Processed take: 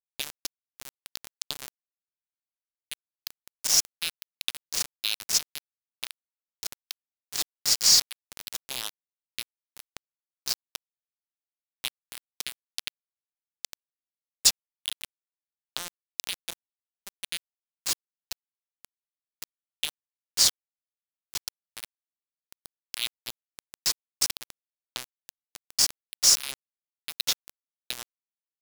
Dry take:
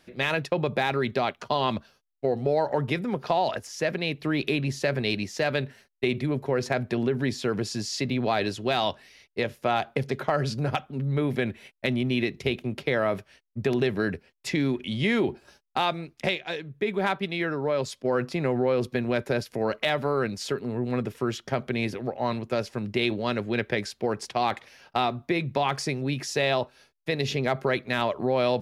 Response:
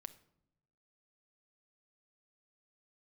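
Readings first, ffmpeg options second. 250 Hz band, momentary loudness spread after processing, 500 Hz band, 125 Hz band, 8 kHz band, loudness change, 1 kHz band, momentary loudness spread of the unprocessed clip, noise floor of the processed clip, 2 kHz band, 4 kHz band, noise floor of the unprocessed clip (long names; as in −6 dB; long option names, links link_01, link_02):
−28.5 dB, 22 LU, −28.0 dB, −28.0 dB, +16.0 dB, +0.5 dB, −19.5 dB, 5 LU, below −85 dBFS, −11.0 dB, +5.5 dB, −68 dBFS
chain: -af "acompressor=threshold=-33dB:ratio=8,highpass=frequency=840:width_type=q:width=1.9,aexciter=amount=10.6:drive=8.4:freq=3000,aeval=exprs='1.12*(cos(1*acos(clip(val(0)/1.12,-1,1)))-cos(1*PI/2))+0.0447*(cos(2*acos(clip(val(0)/1.12,-1,1)))-cos(2*PI/2))+0.0126*(cos(5*acos(clip(val(0)/1.12,-1,1)))-cos(5*PI/2))+0.01*(cos(7*acos(clip(val(0)/1.12,-1,1)))-cos(7*PI/2))':channel_layout=same,aeval=exprs='val(0)*gte(abs(val(0)),0.2)':channel_layout=same,volume=-5dB"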